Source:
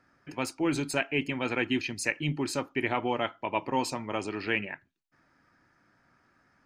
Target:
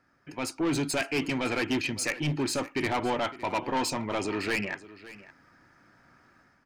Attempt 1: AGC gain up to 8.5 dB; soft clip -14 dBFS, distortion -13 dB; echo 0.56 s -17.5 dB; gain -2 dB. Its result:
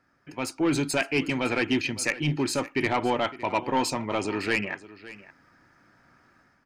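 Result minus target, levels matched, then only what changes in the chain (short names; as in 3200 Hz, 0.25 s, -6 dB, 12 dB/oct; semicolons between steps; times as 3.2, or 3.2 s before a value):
soft clip: distortion -6 dB
change: soft clip -21 dBFS, distortion -8 dB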